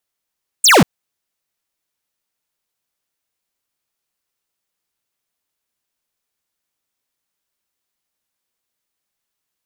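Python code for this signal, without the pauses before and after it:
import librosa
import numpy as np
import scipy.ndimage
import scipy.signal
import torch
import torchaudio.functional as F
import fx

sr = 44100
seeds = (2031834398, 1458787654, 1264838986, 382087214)

y = fx.laser_zap(sr, level_db=-8.5, start_hz=9300.0, end_hz=130.0, length_s=0.19, wave='square')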